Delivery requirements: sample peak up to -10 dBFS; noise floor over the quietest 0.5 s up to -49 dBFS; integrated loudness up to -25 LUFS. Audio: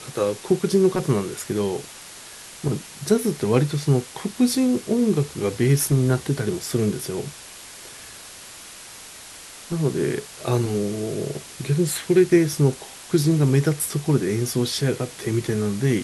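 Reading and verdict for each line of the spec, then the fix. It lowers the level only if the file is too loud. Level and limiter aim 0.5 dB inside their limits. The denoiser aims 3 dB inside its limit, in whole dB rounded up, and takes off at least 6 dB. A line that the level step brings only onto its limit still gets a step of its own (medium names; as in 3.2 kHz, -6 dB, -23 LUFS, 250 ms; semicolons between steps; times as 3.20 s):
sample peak -5.5 dBFS: fail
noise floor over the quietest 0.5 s -41 dBFS: fail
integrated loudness -22.5 LUFS: fail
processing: noise reduction 8 dB, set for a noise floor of -41 dBFS; trim -3 dB; peak limiter -10.5 dBFS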